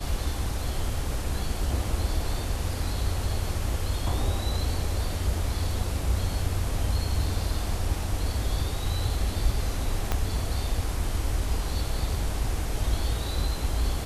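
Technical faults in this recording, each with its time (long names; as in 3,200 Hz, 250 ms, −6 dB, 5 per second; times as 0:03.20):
0:10.12: click −11 dBFS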